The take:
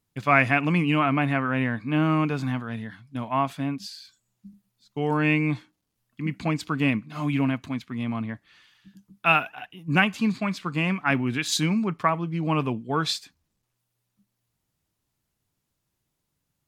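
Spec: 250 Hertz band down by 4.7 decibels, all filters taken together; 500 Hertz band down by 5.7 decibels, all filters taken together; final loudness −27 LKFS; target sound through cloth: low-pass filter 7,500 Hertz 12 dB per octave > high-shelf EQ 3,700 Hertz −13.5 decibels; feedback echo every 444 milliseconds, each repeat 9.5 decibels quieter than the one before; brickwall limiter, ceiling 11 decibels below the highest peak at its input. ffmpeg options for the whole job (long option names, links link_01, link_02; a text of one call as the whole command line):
ffmpeg -i in.wav -af "equalizer=frequency=250:width_type=o:gain=-4.5,equalizer=frequency=500:width_type=o:gain=-6.5,alimiter=limit=-17.5dB:level=0:latency=1,lowpass=7500,highshelf=frequency=3700:gain=-13.5,aecho=1:1:444|888|1332|1776:0.335|0.111|0.0365|0.012,volume=3.5dB" out.wav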